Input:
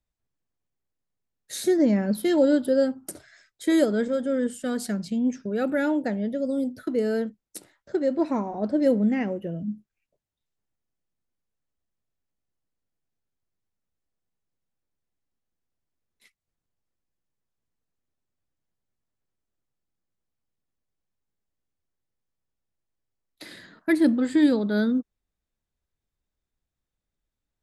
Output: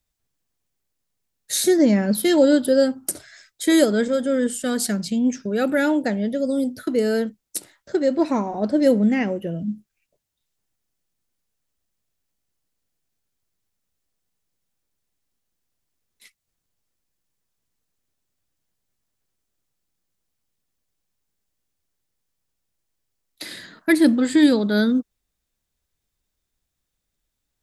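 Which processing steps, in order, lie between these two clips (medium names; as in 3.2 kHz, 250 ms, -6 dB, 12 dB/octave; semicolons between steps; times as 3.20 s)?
treble shelf 2.6 kHz +8.5 dB; trim +4 dB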